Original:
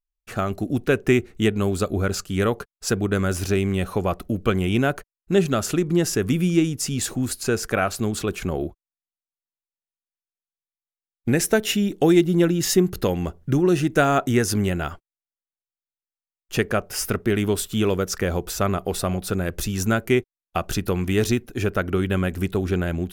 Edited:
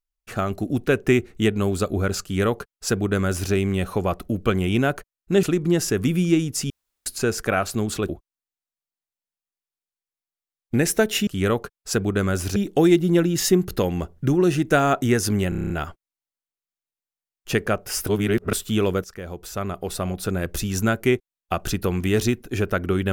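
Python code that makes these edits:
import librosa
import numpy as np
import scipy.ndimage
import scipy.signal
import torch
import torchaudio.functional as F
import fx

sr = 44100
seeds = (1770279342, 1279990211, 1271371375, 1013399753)

y = fx.edit(x, sr, fx.duplicate(start_s=2.23, length_s=1.29, to_s=11.81),
    fx.cut(start_s=5.43, length_s=0.25),
    fx.room_tone_fill(start_s=6.95, length_s=0.36),
    fx.cut(start_s=8.34, length_s=0.29),
    fx.stutter(start_s=14.74, slice_s=0.03, count=8),
    fx.reverse_span(start_s=17.11, length_s=0.46),
    fx.fade_in_from(start_s=18.08, length_s=1.4, floor_db=-15.5), tone=tone)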